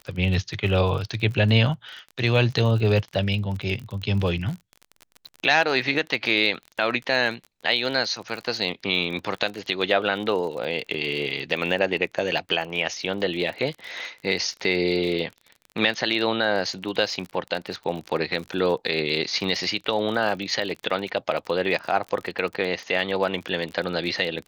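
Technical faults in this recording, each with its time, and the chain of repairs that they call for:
crackle 42/s -31 dBFS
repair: de-click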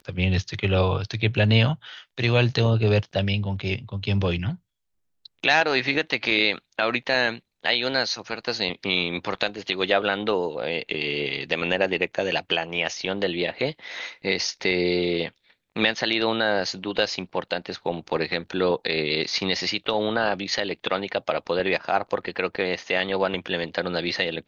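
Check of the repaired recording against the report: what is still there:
none

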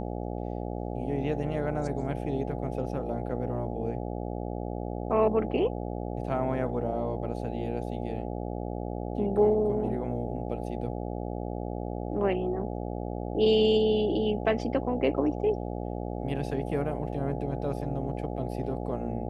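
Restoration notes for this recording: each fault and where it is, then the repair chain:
buzz 60 Hz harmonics 14 -34 dBFS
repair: de-hum 60 Hz, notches 14

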